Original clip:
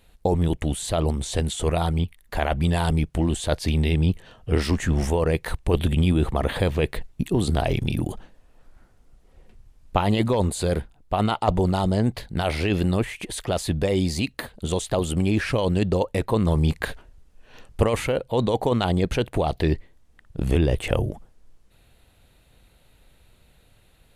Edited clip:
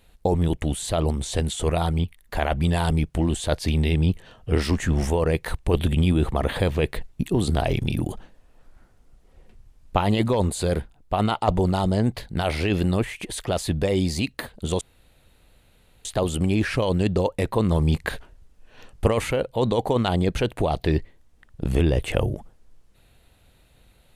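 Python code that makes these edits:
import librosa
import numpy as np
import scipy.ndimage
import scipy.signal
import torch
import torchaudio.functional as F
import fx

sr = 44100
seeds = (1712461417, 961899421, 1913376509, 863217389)

y = fx.edit(x, sr, fx.insert_room_tone(at_s=14.81, length_s=1.24), tone=tone)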